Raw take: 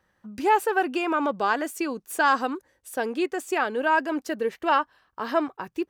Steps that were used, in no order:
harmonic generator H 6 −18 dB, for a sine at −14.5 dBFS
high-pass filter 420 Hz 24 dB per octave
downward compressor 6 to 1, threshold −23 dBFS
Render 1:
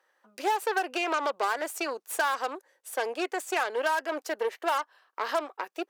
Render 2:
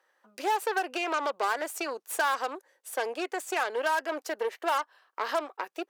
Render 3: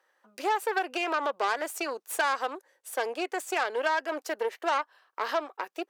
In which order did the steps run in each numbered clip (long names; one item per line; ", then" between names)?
harmonic generator, then high-pass filter, then downward compressor
harmonic generator, then downward compressor, then high-pass filter
downward compressor, then harmonic generator, then high-pass filter